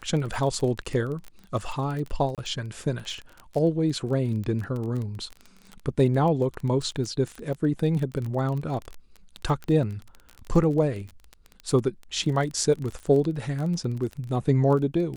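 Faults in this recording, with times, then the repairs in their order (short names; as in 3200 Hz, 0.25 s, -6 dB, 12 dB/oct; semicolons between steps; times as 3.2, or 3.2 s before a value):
crackle 21/s -30 dBFS
2.35–2.38 gap 27 ms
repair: de-click; interpolate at 2.35, 27 ms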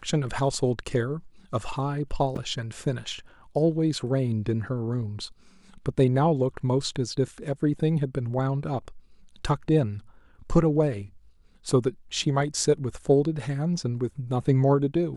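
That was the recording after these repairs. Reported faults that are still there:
none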